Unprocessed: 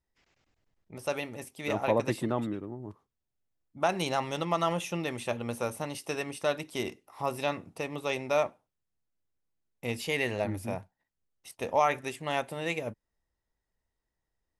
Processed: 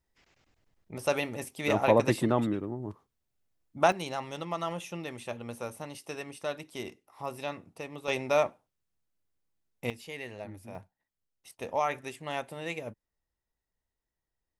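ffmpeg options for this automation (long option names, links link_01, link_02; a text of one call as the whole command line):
ffmpeg -i in.wav -af "asetnsamples=nb_out_samples=441:pad=0,asendcmd='3.92 volume volume -5.5dB;8.08 volume volume 1.5dB;9.9 volume volume -11dB;10.75 volume volume -4dB',volume=4dB" out.wav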